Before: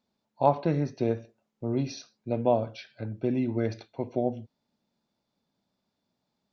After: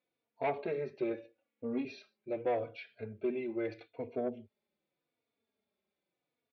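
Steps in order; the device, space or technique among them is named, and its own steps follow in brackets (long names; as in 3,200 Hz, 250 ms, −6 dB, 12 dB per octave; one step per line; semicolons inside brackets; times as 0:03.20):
barber-pole flanger into a guitar amplifier (barber-pole flanger 3.5 ms −0.81 Hz; soft clipping −21.5 dBFS, distortion −15 dB; loudspeaker in its box 86–3,700 Hz, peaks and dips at 120 Hz −10 dB, 180 Hz −10 dB, 270 Hz −4 dB, 430 Hz +7 dB, 900 Hz −6 dB, 2,300 Hz +8 dB)
0:01.13–0:01.85: comb filter 3.6 ms, depth 76%
level −3 dB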